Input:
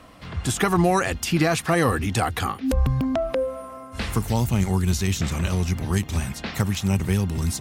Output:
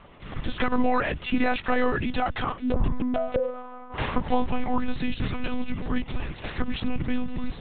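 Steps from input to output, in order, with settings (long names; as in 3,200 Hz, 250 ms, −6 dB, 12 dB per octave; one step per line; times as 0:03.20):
0:03.90–0:04.99: parametric band 830 Hz +9 dB 1.5 octaves
one-pitch LPC vocoder at 8 kHz 250 Hz
level −2 dB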